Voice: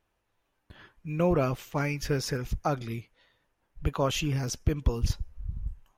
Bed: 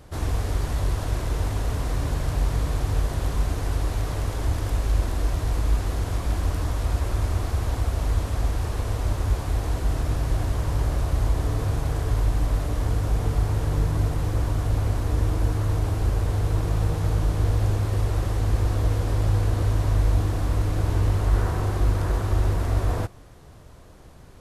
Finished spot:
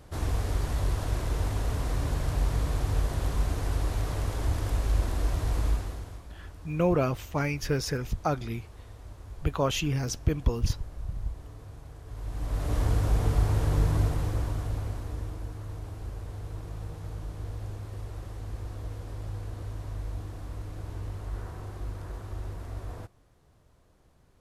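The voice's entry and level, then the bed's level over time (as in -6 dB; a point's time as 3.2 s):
5.60 s, +0.5 dB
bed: 5.67 s -3.5 dB
6.29 s -20.5 dB
12.03 s -20.5 dB
12.74 s -1.5 dB
13.95 s -1.5 dB
15.48 s -15 dB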